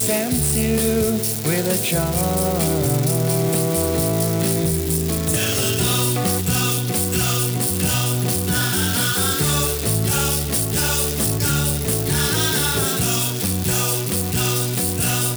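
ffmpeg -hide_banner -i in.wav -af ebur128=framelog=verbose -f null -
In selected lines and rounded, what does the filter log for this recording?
Integrated loudness:
  I:         -18.8 LUFS
  Threshold: -28.8 LUFS
Loudness range:
  LRA:         0.7 LU
  Threshold: -38.7 LUFS
  LRA low:   -19.1 LUFS
  LRA high:  -18.4 LUFS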